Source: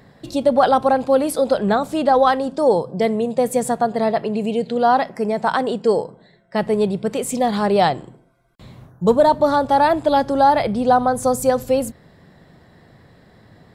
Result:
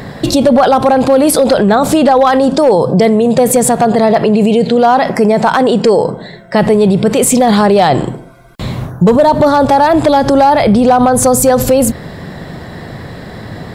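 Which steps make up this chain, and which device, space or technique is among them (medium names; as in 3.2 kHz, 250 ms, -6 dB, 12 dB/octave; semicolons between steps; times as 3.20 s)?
loud club master (compression 2.5:1, threshold -17 dBFS, peak gain reduction 6 dB; hard clipper -12.5 dBFS, distortion -24 dB; loudness maximiser +23 dB); trim -1 dB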